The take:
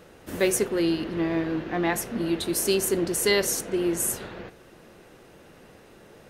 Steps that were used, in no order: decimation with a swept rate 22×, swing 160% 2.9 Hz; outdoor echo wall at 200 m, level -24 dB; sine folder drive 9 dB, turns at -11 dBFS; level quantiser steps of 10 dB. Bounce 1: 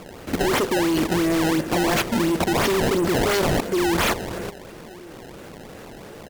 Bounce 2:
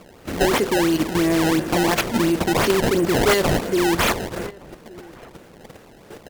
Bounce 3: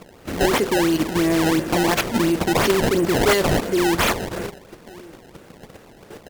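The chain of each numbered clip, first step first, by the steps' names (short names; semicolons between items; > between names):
outdoor echo > decimation with a swept rate > sine folder > level quantiser; decimation with a swept rate > level quantiser > outdoor echo > sine folder; level quantiser > outdoor echo > decimation with a swept rate > sine folder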